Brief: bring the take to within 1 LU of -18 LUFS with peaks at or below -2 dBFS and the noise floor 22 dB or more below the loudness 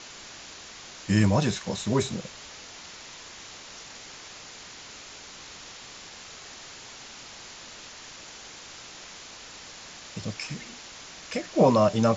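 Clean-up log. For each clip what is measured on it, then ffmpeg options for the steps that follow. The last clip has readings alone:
noise floor -45 dBFS; noise floor target -48 dBFS; loudness -26.0 LUFS; peak level -8.0 dBFS; loudness target -18.0 LUFS
-> -af "afftdn=nr=6:nf=-45"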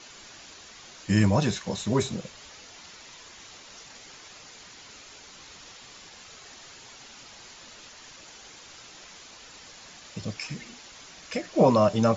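noise floor -48 dBFS; loudness -26.0 LUFS; peak level -8.0 dBFS; loudness target -18.0 LUFS
-> -af "volume=2.51,alimiter=limit=0.794:level=0:latency=1"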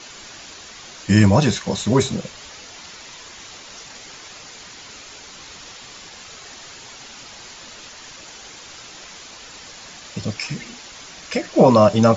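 loudness -18.0 LUFS; peak level -2.0 dBFS; noise floor -40 dBFS

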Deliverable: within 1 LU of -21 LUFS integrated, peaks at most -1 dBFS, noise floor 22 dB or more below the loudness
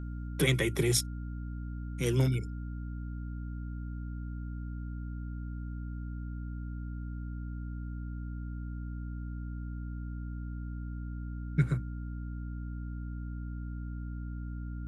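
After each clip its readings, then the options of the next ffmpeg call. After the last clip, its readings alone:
hum 60 Hz; highest harmonic 300 Hz; hum level -36 dBFS; steady tone 1.4 kHz; tone level -56 dBFS; loudness -36.5 LUFS; peak level -12.0 dBFS; loudness target -21.0 LUFS
-> -af "bandreject=f=60:t=h:w=4,bandreject=f=120:t=h:w=4,bandreject=f=180:t=h:w=4,bandreject=f=240:t=h:w=4,bandreject=f=300:t=h:w=4"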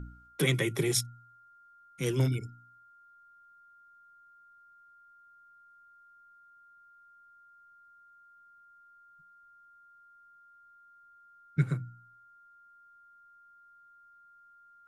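hum not found; steady tone 1.4 kHz; tone level -56 dBFS
-> -af "bandreject=f=1400:w=30"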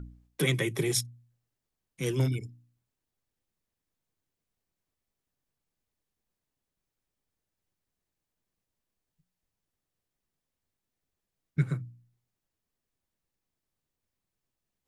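steady tone not found; loudness -30.5 LUFS; peak level -13.0 dBFS; loudness target -21.0 LUFS
-> -af "volume=2.99"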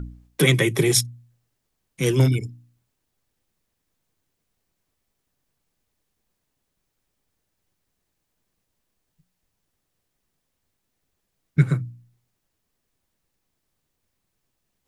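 loudness -21.0 LUFS; peak level -3.5 dBFS; noise floor -78 dBFS

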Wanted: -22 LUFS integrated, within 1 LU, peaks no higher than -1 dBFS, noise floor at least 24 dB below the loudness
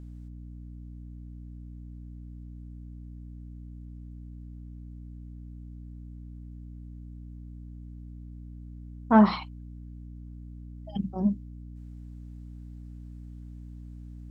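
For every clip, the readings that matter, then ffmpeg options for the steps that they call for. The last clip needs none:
hum 60 Hz; highest harmonic 300 Hz; hum level -40 dBFS; loudness -25.5 LUFS; peak level -8.0 dBFS; loudness target -22.0 LUFS
-> -af "bandreject=f=60:t=h:w=4,bandreject=f=120:t=h:w=4,bandreject=f=180:t=h:w=4,bandreject=f=240:t=h:w=4,bandreject=f=300:t=h:w=4"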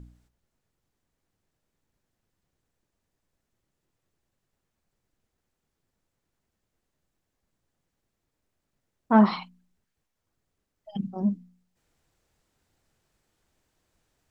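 hum not found; loudness -24.5 LUFS; peak level -8.0 dBFS; loudness target -22.0 LUFS
-> -af "volume=1.33"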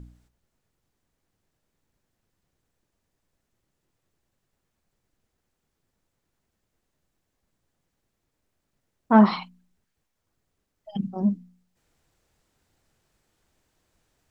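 loudness -22.0 LUFS; peak level -5.5 dBFS; noise floor -79 dBFS

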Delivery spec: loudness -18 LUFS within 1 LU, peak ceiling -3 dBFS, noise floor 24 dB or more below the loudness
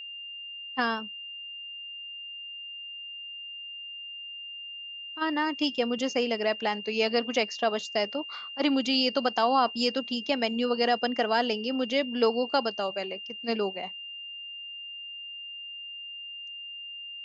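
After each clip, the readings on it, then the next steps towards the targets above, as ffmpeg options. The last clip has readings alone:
steady tone 2.8 kHz; tone level -38 dBFS; loudness -30.0 LUFS; peak level -12.0 dBFS; loudness target -18.0 LUFS
-> -af "bandreject=f=2800:w=30"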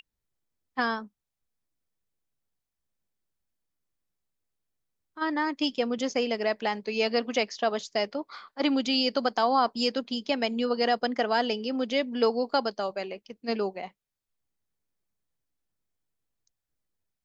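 steady tone not found; loudness -28.0 LUFS; peak level -12.0 dBFS; loudness target -18.0 LUFS
-> -af "volume=3.16,alimiter=limit=0.708:level=0:latency=1"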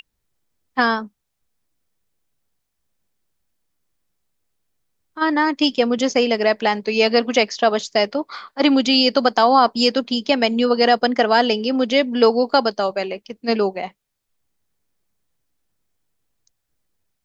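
loudness -18.0 LUFS; peak level -3.0 dBFS; noise floor -76 dBFS

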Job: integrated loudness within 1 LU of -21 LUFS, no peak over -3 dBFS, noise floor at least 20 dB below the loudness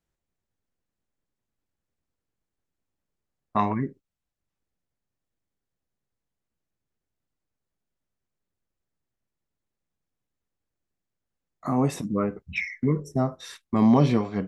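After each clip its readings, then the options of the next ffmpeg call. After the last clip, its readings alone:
loudness -25.0 LUFS; peak level -7.5 dBFS; loudness target -21.0 LUFS
-> -af "volume=1.58"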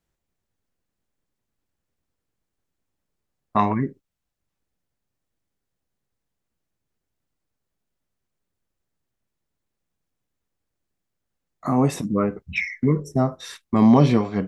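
loudness -21.0 LUFS; peak level -3.5 dBFS; noise floor -82 dBFS

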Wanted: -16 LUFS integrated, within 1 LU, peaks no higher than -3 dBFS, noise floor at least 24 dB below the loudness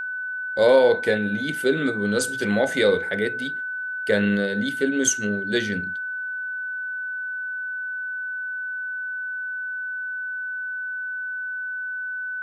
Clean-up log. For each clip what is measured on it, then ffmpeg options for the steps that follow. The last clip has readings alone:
steady tone 1.5 kHz; tone level -27 dBFS; loudness -24.5 LUFS; peak level -5.5 dBFS; loudness target -16.0 LUFS
-> -af "bandreject=f=1500:w=30"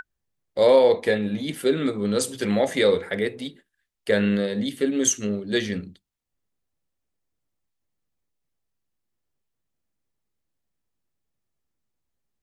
steady tone not found; loudness -22.5 LUFS; peak level -6.0 dBFS; loudness target -16.0 LUFS
-> -af "volume=2.11,alimiter=limit=0.708:level=0:latency=1"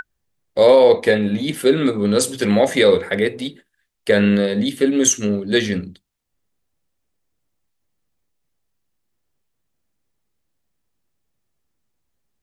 loudness -16.5 LUFS; peak level -3.0 dBFS; noise floor -74 dBFS

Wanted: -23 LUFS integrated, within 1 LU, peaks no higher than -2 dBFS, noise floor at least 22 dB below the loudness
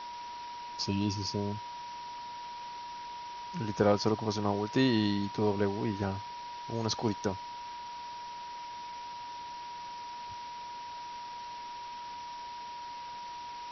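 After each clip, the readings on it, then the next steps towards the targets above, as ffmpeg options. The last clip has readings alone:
steady tone 960 Hz; tone level -40 dBFS; noise floor -43 dBFS; noise floor target -57 dBFS; loudness -35.0 LUFS; peak level -11.5 dBFS; loudness target -23.0 LUFS
-> -af "bandreject=f=960:w=30"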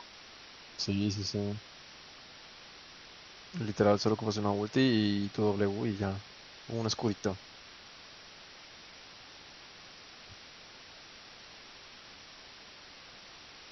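steady tone not found; noise floor -52 dBFS; noise floor target -54 dBFS
-> -af "afftdn=nr=6:nf=-52"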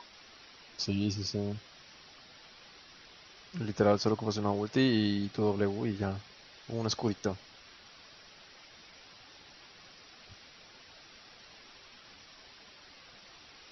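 noise floor -55 dBFS; loudness -32.0 LUFS; peak level -11.5 dBFS; loudness target -23.0 LUFS
-> -af "volume=2.82"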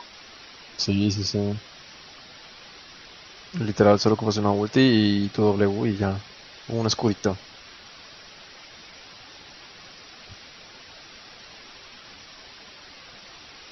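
loudness -23.0 LUFS; peak level -2.5 dBFS; noise floor -46 dBFS

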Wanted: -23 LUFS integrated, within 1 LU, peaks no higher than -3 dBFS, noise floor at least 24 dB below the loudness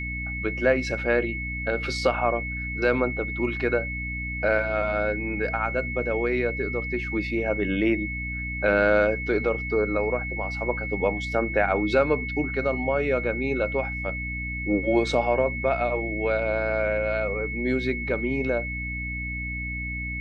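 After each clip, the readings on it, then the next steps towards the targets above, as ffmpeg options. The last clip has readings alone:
hum 60 Hz; highest harmonic 300 Hz; hum level -31 dBFS; steady tone 2.2 kHz; tone level -31 dBFS; loudness -25.5 LUFS; peak level -8.5 dBFS; loudness target -23.0 LUFS
-> -af "bandreject=f=60:t=h:w=6,bandreject=f=120:t=h:w=6,bandreject=f=180:t=h:w=6,bandreject=f=240:t=h:w=6,bandreject=f=300:t=h:w=6"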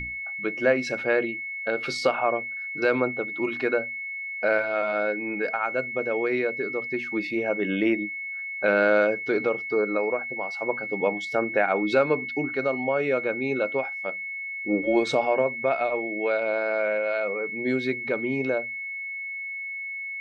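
hum not found; steady tone 2.2 kHz; tone level -31 dBFS
-> -af "bandreject=f=2200:w=30"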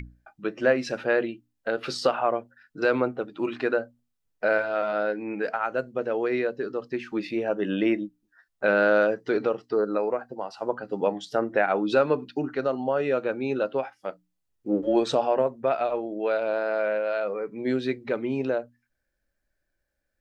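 steady tone not found; loudness -26.5 LUFS; peak level -9.0 dBFS; loudness target -23.0 LUFS
-> -af "volume=1.5"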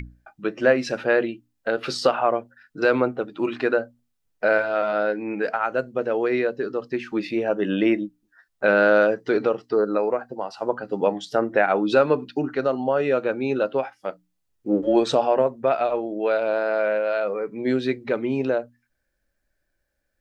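loudness -23.0 LUFS; peak level -5.5 dBFS; noise floor -75 dBFS

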